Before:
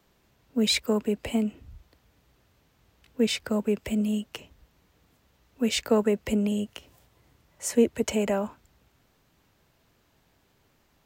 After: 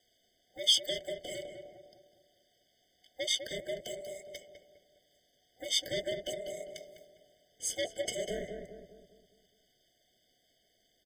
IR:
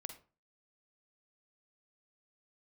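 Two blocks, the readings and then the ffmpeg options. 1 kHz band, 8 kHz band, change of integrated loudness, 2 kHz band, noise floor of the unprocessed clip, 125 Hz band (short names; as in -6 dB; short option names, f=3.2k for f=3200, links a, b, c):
-15.0 dB, -2.5 dB, -7.0 dB, -7.0 dB, -67 dBFS, -16.5 dB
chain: -filter_complex "[0:a]afftfilt=real='real(if(between(b,1,1008),(2*floor((b-1)/48)+1)*48-b,b),0)':imag='imag(if(between(b,1,1008),(2*floor((b-1)/48)+1)*48-b,b),0)*if(between(b,1,1008),-1,1)':win_size=2048:overlap=0.75,highshelf=f=5k:g=-8.5,bandreject=f=165.7:t=h:w=4,bandreject=f=331.4:t=h:w=4,bandreject=f=497.1:t=h:w=4,bandreject=f=662.8:t=h:w=4,flanger=delay=2.2:depth=4.7:regen=-59:speed=0.91:shape=sinusoidal,asoftclip=type=tanh:threshold=-25.5dB,tremolo=f=240:d=0.857,aemphasis=mode=reproduction:type=cd,aexciter=amount=5.7:drive=7.8:freq=2.5k,asplit=2[a][b];[b]adelay=203,lowpass=f=1.3k:p=1,volume=-5dB,asplit=2[c][d];[d]adelay=203,lowpass=f=1.3k:p=1,volume=0.48,asplit=2[e][f];[f]adelay=203,lowpass=f=1.3k:p=1,volume=0.48,asplit=2[g][h];[h]adelay=203,lowpass=f=1.3k:p=1,volume=0.48,asplit=2[i][j];[j]adelay=203,lowpass=f=1.3k:p=1,volume=0.48,asplit=2[k][l];[l]adelay=203,lowpass=f=1.3k:p=1,volume=0.48[m];[a][c][e][g][i][k][m]amix=inputs=7:normalize=0,afftfilt=real='re*eq(mod(floor(b*sr/1024/740),2),0)':imag='im*eq(mod(floor(b*sr/1024/740),2),0)':win_size=1024:overlap=0.75"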